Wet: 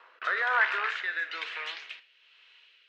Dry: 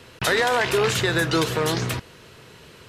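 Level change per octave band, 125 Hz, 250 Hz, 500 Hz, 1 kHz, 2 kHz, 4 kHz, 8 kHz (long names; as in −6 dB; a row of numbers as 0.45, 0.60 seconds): below −40 dB, below −30 dB, −21.0 dB, −6.5 dB, −2.5 dB, −12.5 dB, below −25 dB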